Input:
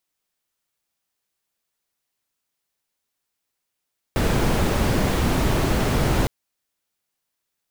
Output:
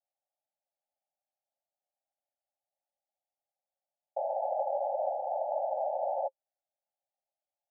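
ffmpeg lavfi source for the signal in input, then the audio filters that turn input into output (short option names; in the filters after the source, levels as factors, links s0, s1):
-f lavfi -i "anoisesrc=c=brown:a=0.495:d=2.11:r=44100:seed=1"
-af "asuperpass=centerf=680:order=20:qfactor=2"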